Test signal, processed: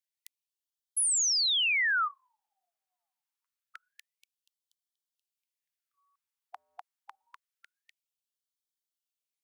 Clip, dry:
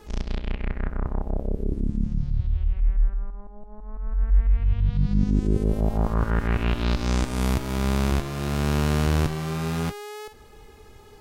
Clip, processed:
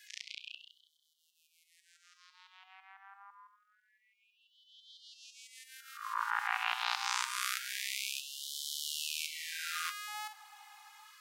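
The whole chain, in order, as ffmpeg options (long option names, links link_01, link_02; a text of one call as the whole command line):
ffmpeg -i in.wav -filter_complex "[0:a]acrossover=split=190|860[link_01][link_02][link_03];[link_01]acompressor=threshold=-33dB:ratio=6[link_04];[link_04][link_02][link_03]amix=inputs=3:normalize=0,afftfilt=real='re*gte(b*sr/1024,690*pow(3000/690,0.5+0.5*sin(2*PI*0.26*pts/sr)))':imag='im*gte(b*sr/1024,690*pow(3000/690,0.5+0.5*sin(2*PI*0.26*pts/sr)))':win_size=1024:overlap=0.75" out.wav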